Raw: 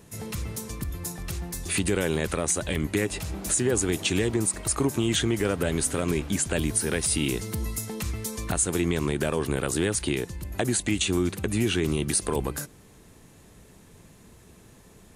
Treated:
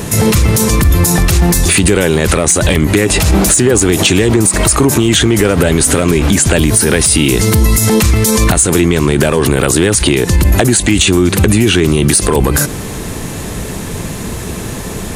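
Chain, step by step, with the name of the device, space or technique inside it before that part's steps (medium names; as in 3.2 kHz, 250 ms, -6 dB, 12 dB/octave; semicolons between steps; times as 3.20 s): loud club master (compression 2.5:1, threshold -29 dBFS, peak gain reduction 7 dB; hard clipper -22 dBFS, distortion -25 dB; loudness maximiser +31.5 dB); trim -1 dB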